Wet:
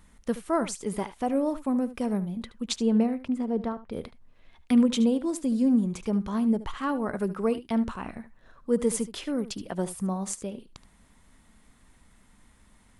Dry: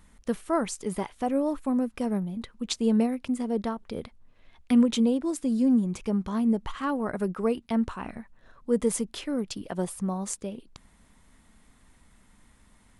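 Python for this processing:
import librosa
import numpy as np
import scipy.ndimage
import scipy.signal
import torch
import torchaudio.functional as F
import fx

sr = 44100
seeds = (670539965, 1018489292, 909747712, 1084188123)

y = fx.lowpass(x, sr, hz=fx.line((2.76, 3100.0), (3.91, 1300.0)), slope=6, at=(2.76, 3.91), fade=0.02)
y = y + 10.0 ** (-15.0 / 20.0) * np.pad(y, (int(74 * sr / 1000.0), 0))[:len(y)]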